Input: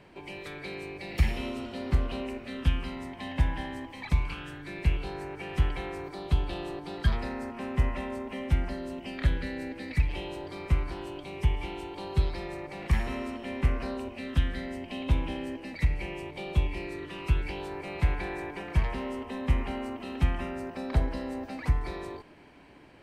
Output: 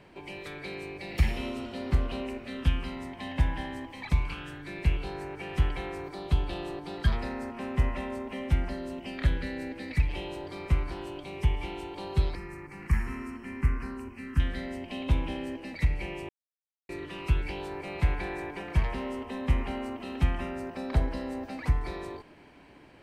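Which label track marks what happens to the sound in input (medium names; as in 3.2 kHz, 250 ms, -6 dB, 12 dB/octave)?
12.350000	14.400000	static phaser centre 1.5 kHz, stages 4
16.290000	16.890000	mute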